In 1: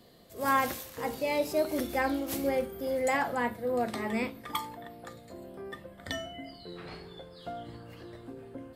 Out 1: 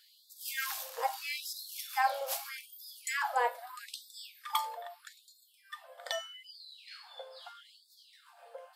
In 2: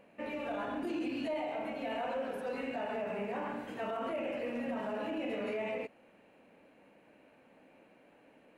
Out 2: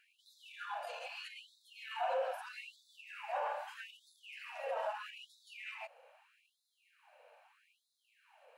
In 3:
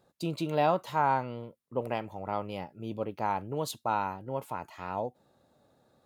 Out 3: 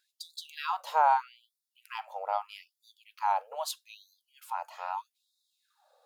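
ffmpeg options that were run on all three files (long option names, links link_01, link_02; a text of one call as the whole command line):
ffmpeg -i in.wav -af "equalizer=frequency=800:width_type=o:width=0.33:gain=4,equalizer=frequency=2000:width_type=o:width=0.33:gain=-6,equalizer=frequency=5000:width_type=o:width=0.33:gain=3,afftfilt=real='re*gte(b*sr/1024,440*pow(3500/440,0.5+0.5*sin(2*PI*0.79*pts/sr)))':imag='im*gte(b*sr/1024,440*pow(3500/440,0.5+0.5*sin(2*PI*0.79*pts/sr)))':win_size=1024:overlap=0.75,volume=1.5dB" out.wav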